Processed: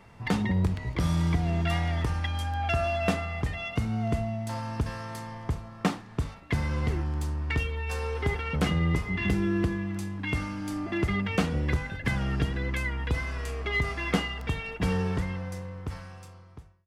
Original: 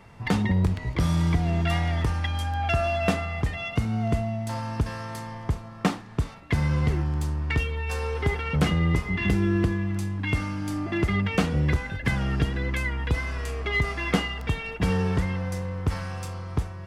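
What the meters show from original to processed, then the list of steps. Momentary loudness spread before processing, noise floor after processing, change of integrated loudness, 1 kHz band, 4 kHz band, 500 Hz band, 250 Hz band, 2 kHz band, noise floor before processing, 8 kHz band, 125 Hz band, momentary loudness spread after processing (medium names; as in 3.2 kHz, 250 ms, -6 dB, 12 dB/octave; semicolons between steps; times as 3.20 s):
7 LU, -48 dBFS, -3.0 dB, -2.5 dB, -2.5 dB, -2.5 dB, -3.0 dB, -2.5 dB, -41 dBFS, -3.0 dB, -3.5 dB, 9 LU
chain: fade out at the end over 1.98 s; hum notches 50/100/150 Hz; trim -2.5 dB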